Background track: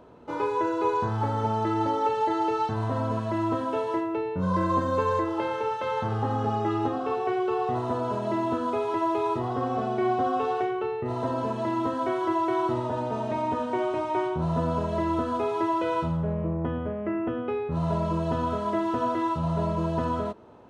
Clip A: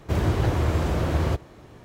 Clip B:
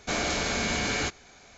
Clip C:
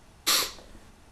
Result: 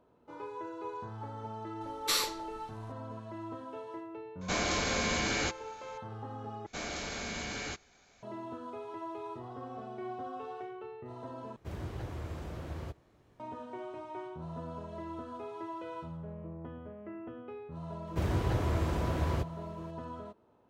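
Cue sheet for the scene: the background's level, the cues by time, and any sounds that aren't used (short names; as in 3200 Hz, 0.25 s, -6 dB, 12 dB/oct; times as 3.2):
background track -15.5 dB
1.81 add C -5.5 dB + high shelf 10000 Hz -4 dB
4.41 add B -3.5 dB
6.66 replace with B -10.5 dB
11.56 replace with A -17.5 dB
18.07 add A -8 dB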